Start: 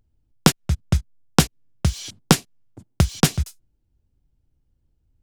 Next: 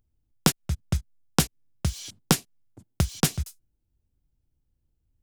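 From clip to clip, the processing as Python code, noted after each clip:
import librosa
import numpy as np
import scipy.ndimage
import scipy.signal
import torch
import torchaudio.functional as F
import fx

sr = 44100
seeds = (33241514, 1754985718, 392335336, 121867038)

y = fx.high_shelf(x, sr, hz=8500.0, db=7.5)
y = y * librosa.db_to_amplitude(-6.5)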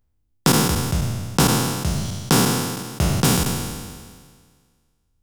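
y = fx.spec_trails(x, sr, decay_s=1.75)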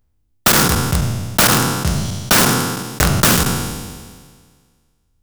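y = (np.mod(10.0 ** (11.0 / 20.0) * x + 1.0, 2.0) - 1.0) / 10.0 ** (11.0 / 20.0)
y = fx.dynamic_eq(y, sr, hz=1400.0, q=2.3, threshold_db=-41.0, ratio=4.0, max_db=6)
y = y * librosa.db_to_amplitude(4.5)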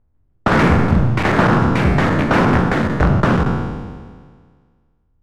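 y = scipy.signal.sosfilt(scipy.signal.butter(2, 1300.0, 'lowpass', fs=sr, output='sos'), x)
y = fx.echo_pitch(y, sr, ms=150, semitones=4, count=2, db_per_echo=-3.0)
y = y * librosa.db_to_amplitude(2.0)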